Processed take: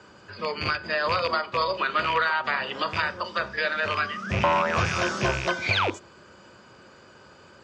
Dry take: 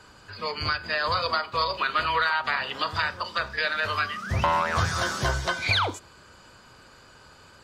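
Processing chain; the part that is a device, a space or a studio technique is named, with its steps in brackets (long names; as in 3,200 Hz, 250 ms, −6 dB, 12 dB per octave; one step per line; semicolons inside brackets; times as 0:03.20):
car door speaker with a rattle (loose part that buzzes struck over −36 dBFS, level −17 dBFS; loudspeaker in its box 86–6,800 Hz, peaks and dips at 200 Hz +6 dB, 360 Hz +7 dB, 560 Hz +5 dB, 4,100 Hz −6 dB)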